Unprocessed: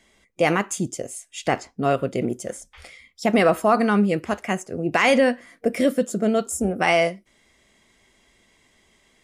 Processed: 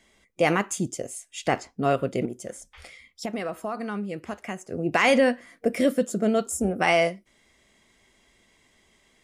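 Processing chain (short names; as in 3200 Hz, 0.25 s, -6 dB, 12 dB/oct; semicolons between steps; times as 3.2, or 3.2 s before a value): 2.25–4.69 compressor 3:1, threshold -30 dBFS, peak gain reduction 13 dB; gain -2 dB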